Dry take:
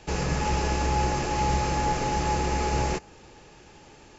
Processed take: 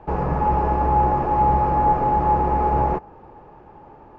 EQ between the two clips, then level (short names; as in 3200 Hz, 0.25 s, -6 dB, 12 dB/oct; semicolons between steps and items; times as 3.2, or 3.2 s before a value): synth low-pass 970 Hz, resonance Q 2.1; +3.5 dB